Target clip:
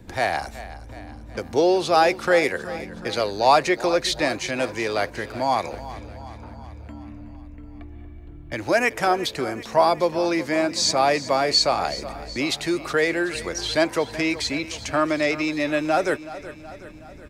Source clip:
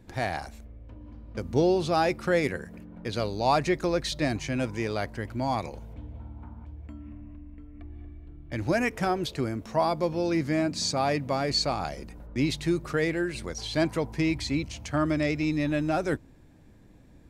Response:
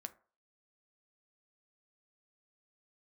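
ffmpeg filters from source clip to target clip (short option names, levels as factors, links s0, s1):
-filter_complex "[0:a]acrossover=split=350|620|3700[s0][s1][s2][s3];[s0]acompressor=threshold=0.00631:ratio=16[s4];[s4][s1][s2][s3]amix=inputs=4:normalize=0,aecho=1:1:373|746|1119|1492|1865|2238:0.168|0.0974|0.0565|0.0328|0.019|0.011,volume=2.51"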